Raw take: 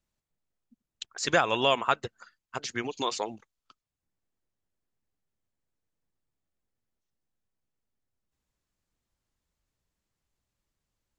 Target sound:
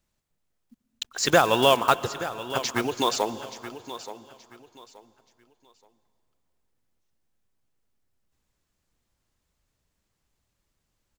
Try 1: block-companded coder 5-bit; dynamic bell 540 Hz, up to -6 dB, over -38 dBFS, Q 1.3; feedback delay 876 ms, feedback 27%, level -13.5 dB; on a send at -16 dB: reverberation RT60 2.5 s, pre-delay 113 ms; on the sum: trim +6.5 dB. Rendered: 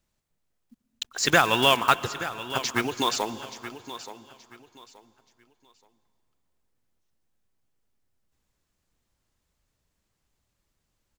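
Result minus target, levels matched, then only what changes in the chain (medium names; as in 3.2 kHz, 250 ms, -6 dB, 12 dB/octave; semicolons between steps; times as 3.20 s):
500 Hz band -4.5 dB
change: dynamic bell 2.1 kHz, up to -6 dB, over -38 dBFS, Q 1.3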